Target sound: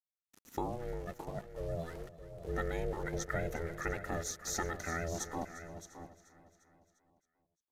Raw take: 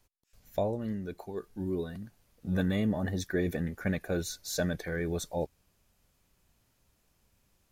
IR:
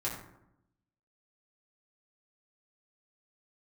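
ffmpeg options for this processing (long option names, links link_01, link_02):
-filter_complex "[0:a]equalizer=frequency=315:width_type=o:width=0.33:gain=6,equalizer=frequency=1600:width_type=o:width=0.33:gain=11,equalizer=frequency=3150:width_type=o:width=0.33:gain=-8,equalizer=frequency=6300:width_type=o:width=0.33:gain=10,acompressor=threshold=-51dB:ratio=1.5,aeval=exprs='val(0)*gte(abs(val(0)),0.00237)':channel_layout=same,aresample=32000,aresample=44100,asplit=2[link_01][link_02];[link_02]aecho=0:1:617:0.266[link_03];[link_01][link_03]amix=inputs=2:normalize=0,aeval=exprs='val(0)*sin(2*PI*250*n/s)':channel_layout=same,asplit=2[link_04][link_05];[link_05]aecho=0:1:350|700|1050|1400|1750:0.141|0.0805|0.0459|0.0262|0.0149[link_06];[link_04][link_06]amix=inputs=2:normalize=0,volume=4dB"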